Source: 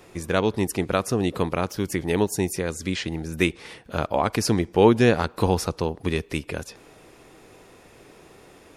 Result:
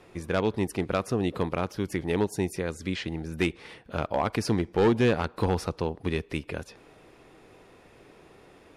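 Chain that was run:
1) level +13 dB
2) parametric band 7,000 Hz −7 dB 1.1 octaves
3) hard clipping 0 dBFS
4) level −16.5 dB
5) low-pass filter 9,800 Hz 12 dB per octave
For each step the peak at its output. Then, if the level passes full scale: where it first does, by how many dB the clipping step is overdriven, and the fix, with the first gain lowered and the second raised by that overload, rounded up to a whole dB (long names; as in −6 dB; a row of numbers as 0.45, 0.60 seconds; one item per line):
+9.0, +9.0, 0.0, −16.5, −16.0 dBFS
step 1, 9.0 dB
step 1 +4 dB, step 4 −7.5 dB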